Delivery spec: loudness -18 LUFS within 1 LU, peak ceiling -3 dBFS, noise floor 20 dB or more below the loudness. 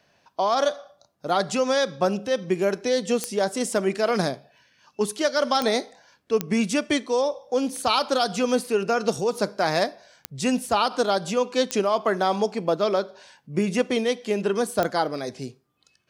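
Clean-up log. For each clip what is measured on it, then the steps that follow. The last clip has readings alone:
clicks found 6; loudness -24.5 LUFS; peak level -7.0 dBFS; loudness target -18.0 LUFS
-> de-click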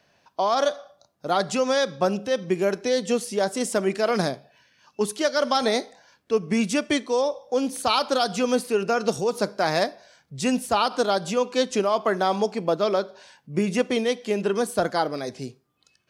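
clicks found 0; loudness -24.5 LUFS; peak level -8.0 dBFS; loudness target -18.0 LUFS
-> trim +6.5 dB; peak limiter -3 dBFS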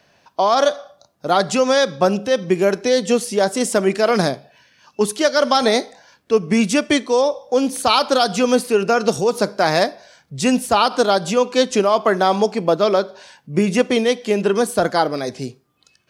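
loudness -18.0 LUFS; peak level -3.0 dBFS; noise floor -62 dBFS

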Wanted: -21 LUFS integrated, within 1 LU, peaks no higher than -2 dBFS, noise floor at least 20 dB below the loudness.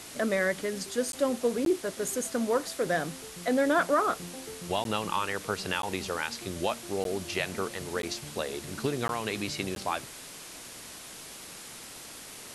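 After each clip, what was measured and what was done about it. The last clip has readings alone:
dropouts 8; longest dropout 12 ms; noise floor -45 dBFS; noise floor target -51 dBFS; loudness -30.5 LUFS; peak level -14.0 dBFS; loudness target -21.0 LUFS
-> interpolate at 1.12/1.65/4.84/5.82/7.04/8.02/9.08/9.75 s, 12 ms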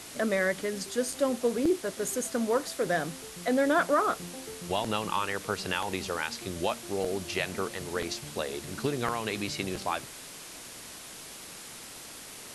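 dropouts 0; noise floor -45 dBFS; noise floor target -51 dBFS
-> noise reduction 6 dB, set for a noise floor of -45 dBFS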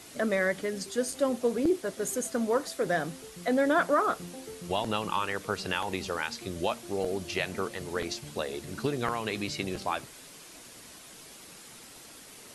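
noise floor -50 dBFS; noise floor target -51 dBFS
-> noise reduction 6 dB, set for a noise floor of -50 dBFS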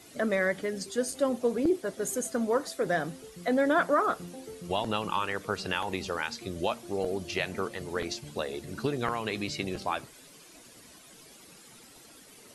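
noise floor -53 dBFS; loudness -30.5 LUFS; peak level -14.5 dBFS; loudness target -21.0 LUFS
-> trim +9.5 dB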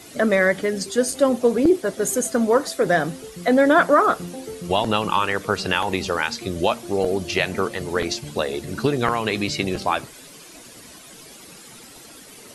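loudness -21.0 LUFS; peak level -5.0 dBFS; noise floor -44 dBFS

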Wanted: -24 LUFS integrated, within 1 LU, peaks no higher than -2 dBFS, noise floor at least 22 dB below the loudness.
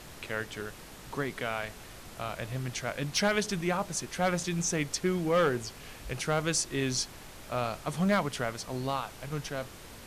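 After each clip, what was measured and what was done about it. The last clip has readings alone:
clipped samples 0.5%; clipping level -20.0 dBFS; noise floor -48 dBFS; noise floor target -54 dBFS; loudness -31.5 LUFS; peak level -20.0 dBFS; loudness target -24.0 LUFS
-> clip repair -20 dBFS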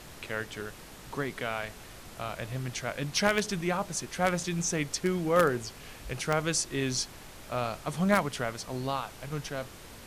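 clipped samples 0.0%; noise floor -48 dBFS; noise floor target -53 dBFS
-> noise print and reduce 6 dB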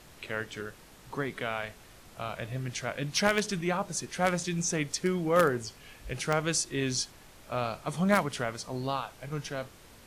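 noise floor -54 dBFS; loudness -31.0 LUFS; peak level -11.0 dBFS; loudness target -24.0 LUFS
-> trim +7 dB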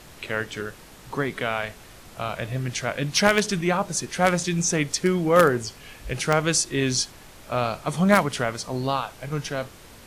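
loudness -24.0 LUFS; peak level -4.0 dBFS; noise floor -47 dBFS

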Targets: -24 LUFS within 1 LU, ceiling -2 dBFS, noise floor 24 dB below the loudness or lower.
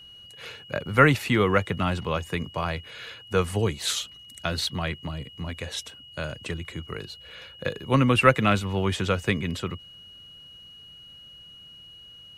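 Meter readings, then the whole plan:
steady tone 2.9 kHz; tone level -45 dBFS; loudness -26.0 LUFS; peak level -3.0 dBFS; loudness target -24.0 LUFS
-> band-stop 2.9 kHz, Q 30; trim +2 dB; peak limiter -2 dBFS

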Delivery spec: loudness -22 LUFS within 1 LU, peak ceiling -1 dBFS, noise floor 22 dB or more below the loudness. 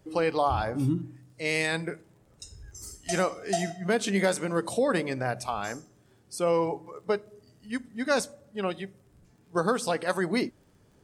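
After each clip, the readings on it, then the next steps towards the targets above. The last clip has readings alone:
tick rate 27 per s; loudness -29.0 LUFS; peak level -11.5 dBFS; loudness target -22.0 LUFS
-> de-click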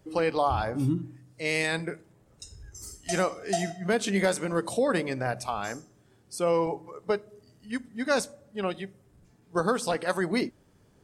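tick rate 0 per s; loudness -29.0 LUFS; peak level -11.5 dBFS; loudness target -22.0 LUFS
-> trim +7 dB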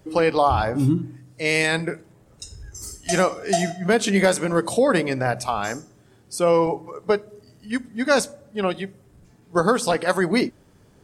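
loudness -22.0 LUFS; peak level -4.5 dBFS; noise floor -54 dBFS

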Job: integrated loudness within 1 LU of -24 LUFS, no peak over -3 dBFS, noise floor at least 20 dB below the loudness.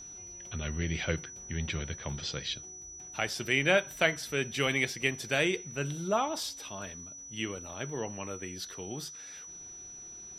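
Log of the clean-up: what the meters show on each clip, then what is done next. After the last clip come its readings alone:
steady tone 5.9 kHz; tone level -44 dBFS; loudness -32.5 LUFS; peak level -10.0 dBFS; loudness target -24.0 LUFS
-> band-stop 5.9 kHz, Q 30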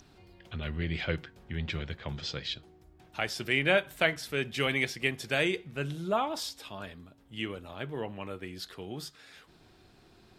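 steady tone not found; loudness -32.5 LUFS; peak level -10.0 dBFS; loudness target -24.0 LUFS
-> trim +8.5 dB; peak limiter -3 dBFS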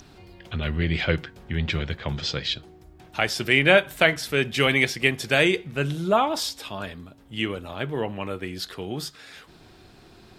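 loudness -24.0 LUFS; peak level -3.0 dBFS; noise floor -51 dBFS

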